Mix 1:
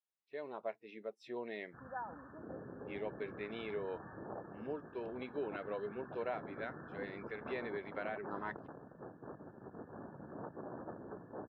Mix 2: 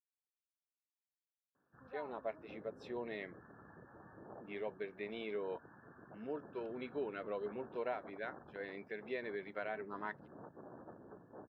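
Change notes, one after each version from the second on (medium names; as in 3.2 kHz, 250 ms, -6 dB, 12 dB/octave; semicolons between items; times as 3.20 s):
speech: entry +1.60 s; background -7.0 dB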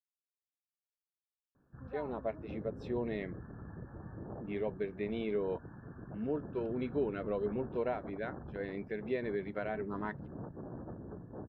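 master: remove high-pass 800 Hz 6 dB/octave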